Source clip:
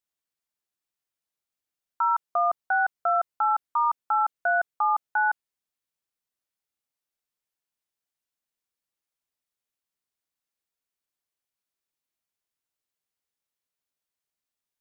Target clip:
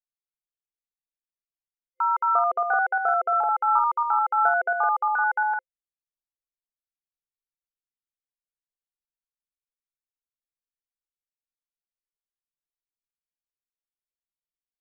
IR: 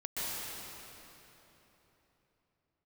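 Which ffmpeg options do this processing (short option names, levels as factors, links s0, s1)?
-filter_complex "[0:a]anlmdn=2.51,superequalizer=7b=2.82:12b=2:15b=3.16:16b=3.98,asplit=2[s0][s1];[s1]aecho=0:1:221.6|274.1:1|0.562[s2];[s0][s2]amix=inputs=2:normalize=0"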